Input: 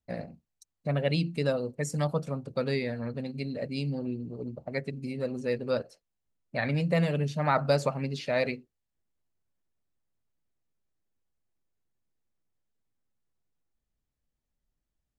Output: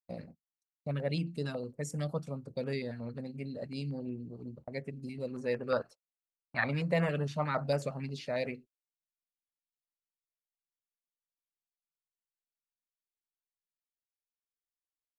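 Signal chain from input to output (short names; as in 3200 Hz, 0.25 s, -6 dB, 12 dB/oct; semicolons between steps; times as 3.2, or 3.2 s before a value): gate -44 dBFS, range -29 dB; 5.33–7.44 bell 1200 Hz +13.5 dB 1.5 oct; stepped notch 11 Hz 520–4100 Hz; gain -5.5 dB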